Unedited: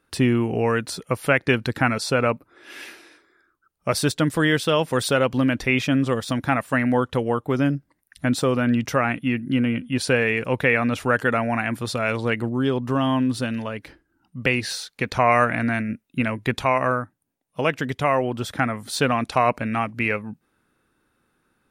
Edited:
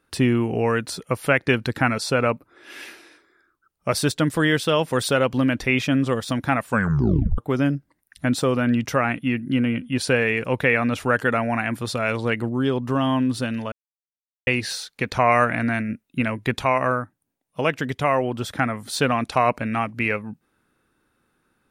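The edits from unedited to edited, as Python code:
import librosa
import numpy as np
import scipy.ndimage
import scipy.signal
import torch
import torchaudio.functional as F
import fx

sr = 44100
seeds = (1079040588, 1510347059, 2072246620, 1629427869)

y = fx.edit(x, sr, fx.tape_stop(start_s=6.67, length_s=0.71),
    fx.silence(start_s=13.72, length_s=0.75), tone=tone)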